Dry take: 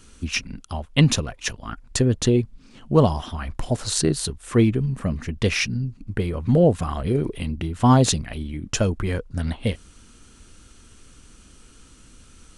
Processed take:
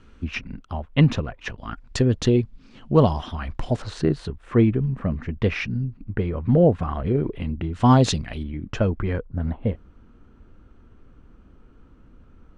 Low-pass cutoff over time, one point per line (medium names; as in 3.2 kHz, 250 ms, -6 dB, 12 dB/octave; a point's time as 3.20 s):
2.2 kHz
from 1.58 s 4.5 kHz
from 3.82 s 2.1 kHz
from 7.73 s 4.9 kHz
from 8.43 s 2.1 kHz
from 9.25 s 1.1 kHz